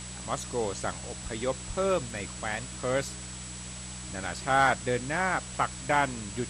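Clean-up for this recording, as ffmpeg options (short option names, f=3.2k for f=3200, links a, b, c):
-af "bandreject=f=61.7:t=h:w=4,bandreject=f=123.4:t=h:w=4,bandreject=f=185.1:t=h:w=4,bandreject=f=7.8k:w=30,afftdn=nr=30:nf=-41"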